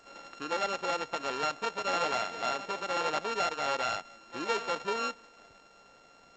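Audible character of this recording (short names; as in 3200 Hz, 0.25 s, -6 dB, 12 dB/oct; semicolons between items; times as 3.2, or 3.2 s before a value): a buzz of ramps at a fixed pitch in blocks of 32 samples; G.722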